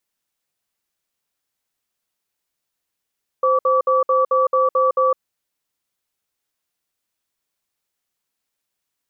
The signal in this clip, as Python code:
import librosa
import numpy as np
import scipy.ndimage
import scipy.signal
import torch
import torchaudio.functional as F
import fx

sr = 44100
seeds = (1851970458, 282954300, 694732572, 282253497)

y = fx.cadence(sr, length_s=1.7, low_hz=520.0, high_hz=1150.0, on_s=0.16, off_s=0.06, level_db=-16.0)